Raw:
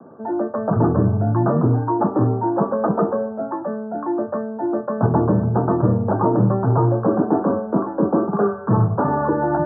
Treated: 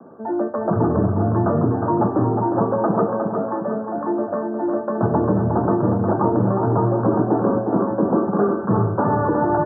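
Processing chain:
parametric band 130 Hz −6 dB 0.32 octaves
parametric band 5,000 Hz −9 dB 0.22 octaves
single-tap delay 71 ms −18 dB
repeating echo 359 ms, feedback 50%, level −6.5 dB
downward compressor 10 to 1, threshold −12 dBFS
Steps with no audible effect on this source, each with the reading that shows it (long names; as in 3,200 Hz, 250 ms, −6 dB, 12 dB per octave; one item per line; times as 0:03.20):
parametric band 5,000 Hz: nothing at its input above 1,400 Hz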